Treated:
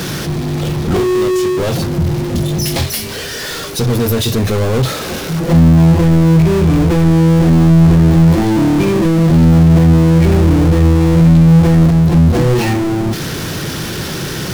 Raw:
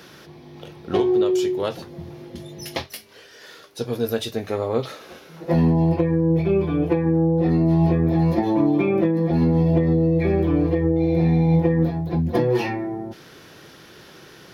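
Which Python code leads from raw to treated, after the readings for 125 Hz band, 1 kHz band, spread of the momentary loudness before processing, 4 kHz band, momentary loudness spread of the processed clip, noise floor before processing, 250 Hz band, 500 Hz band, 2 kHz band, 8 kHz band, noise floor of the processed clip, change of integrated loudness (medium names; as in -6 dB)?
+12.5 dB, +8.0 dB, 18 LU, +14.5 dB, 12 LU, -47 dBFS, +9.5 dB, +5.0 dB, +11.5 dB, no reading, -23 dBFS, +8.5 dB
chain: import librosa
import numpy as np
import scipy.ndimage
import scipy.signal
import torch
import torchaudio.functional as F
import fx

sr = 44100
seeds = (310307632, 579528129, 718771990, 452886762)

y = fx.power_curve(x, sr, exponent=0.35)
y = fx.bass_treble(y, sr, bass_db=11, treble_db=4)
y = y * 10.0 ** (-2.5 / 20.0)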